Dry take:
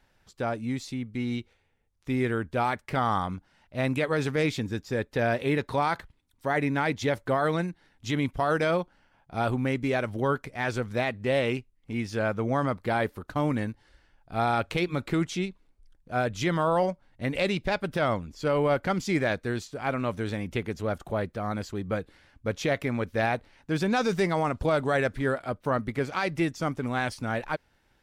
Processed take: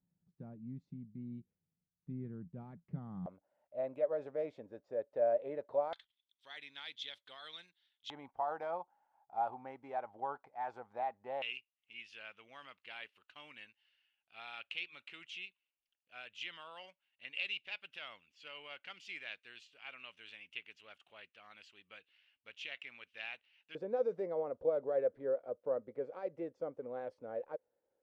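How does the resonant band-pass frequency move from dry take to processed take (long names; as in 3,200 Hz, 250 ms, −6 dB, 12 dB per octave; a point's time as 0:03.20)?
resonant band-pass, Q 7.7
170 Hz
from 0:03.26 590 Hz
from 0:05.93 3,400 Hz
from 0:08.10 820 Hz
from 0:11.42 2,800 Hz
from 0:23.75 510 Hz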